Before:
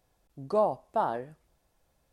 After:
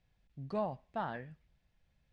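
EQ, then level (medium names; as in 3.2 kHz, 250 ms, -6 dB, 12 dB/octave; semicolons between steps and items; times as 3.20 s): low-pass 3.2 kHz 12 dB/octave; dynamic bell 1.7 kHz, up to +5 dB, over -44 dBFS, Q 1.3; high-order bell 620 Hz -11.5 dB 2.6 oct; 0.0 dB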